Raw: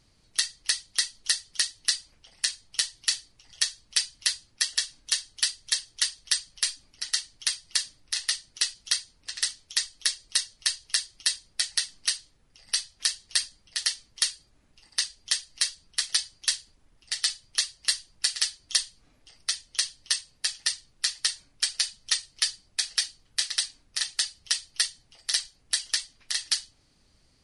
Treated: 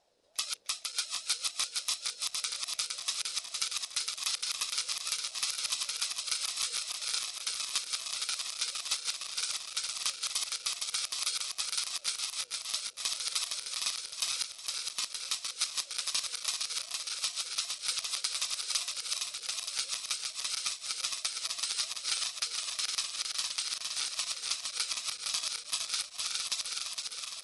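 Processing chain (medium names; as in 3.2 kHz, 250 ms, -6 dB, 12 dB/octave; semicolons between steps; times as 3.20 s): backward echo that repeats 231 ms, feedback 83%, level -2.5 dB; ring modulator with a swept carrier 590 Hz, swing 20%, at 2.6 Hz; trim -6 dB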